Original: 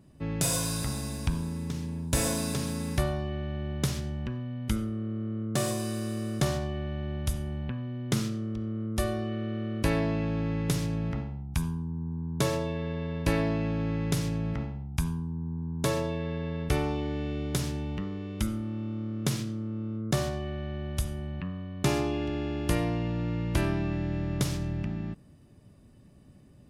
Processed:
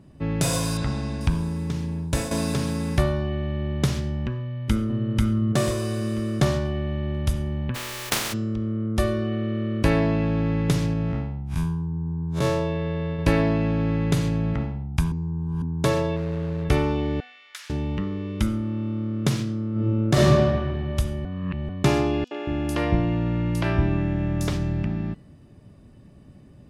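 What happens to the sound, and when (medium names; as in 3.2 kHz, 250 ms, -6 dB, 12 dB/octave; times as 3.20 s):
0.77–1.21 s: low-pass 4.4 kHz
1.90–2.31 s: fade out equal-power, to -11 dB
4.40–5.03 s: echo throw 490 ms, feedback 35%, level 0 dB
7.74–8.32 s: spectral contrast reduction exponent 0.13
10.93–13.19 s: spectral blur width 81 ms
13.99–14.62 s: band-stop 5.4 kHz, Q 11
15.12–15.62 s: reverse
16.16–16.65 s: median filter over 41 samples
17.20–17.70 s: ladder high-pass 1.3 kHz, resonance 35%
19.71–20.26 s: reverb throw, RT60 1.7 s, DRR -5.5 dB
21.25–21.69 s: reverse
22.24–24.53 s: three bands offset in time highs, mids, lows 70/230 ms, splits 340/4800 Hz
whole clip: treble shelf 6.2 kHz -10 dB; de-hum 246.5 Hz, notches 31; trim +6.5 dB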